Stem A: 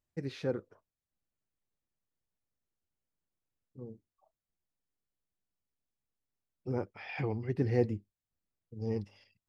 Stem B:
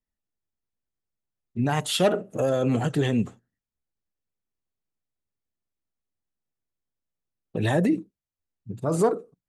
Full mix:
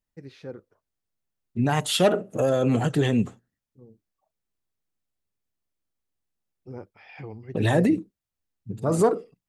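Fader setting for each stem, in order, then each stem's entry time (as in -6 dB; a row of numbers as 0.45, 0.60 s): -5.0, +1.5 dB; 0.00, 0.00 s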